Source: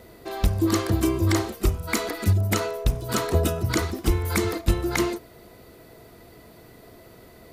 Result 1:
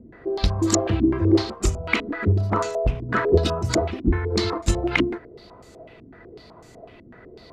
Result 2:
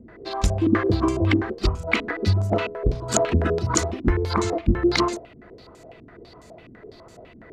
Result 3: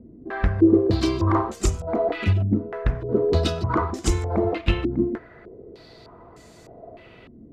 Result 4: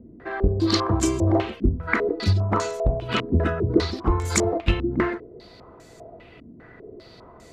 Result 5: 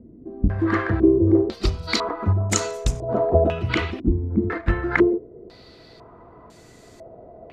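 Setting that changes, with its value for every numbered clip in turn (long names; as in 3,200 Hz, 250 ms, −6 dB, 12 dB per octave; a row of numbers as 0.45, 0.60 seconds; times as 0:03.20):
low-pass on a step sequencer, speed: 8, 12, 3.3, 5, 2 Hertz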